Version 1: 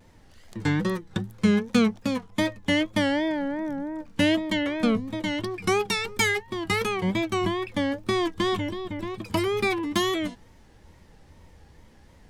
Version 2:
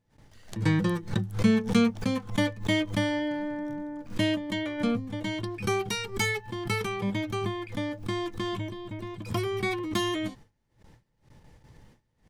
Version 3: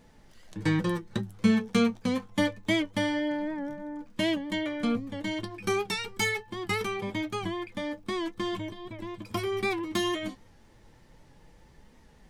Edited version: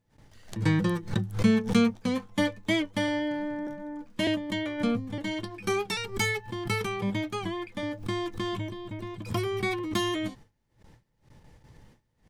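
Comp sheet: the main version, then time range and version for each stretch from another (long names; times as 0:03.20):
2
0:01.94–0:03.08: punch in from 3
0:03.67–0:04.27: punch in from 3
0:05.18–0:05.97: punch in from 3
0:07.24–0:07.83: punch in from 3
not used: 1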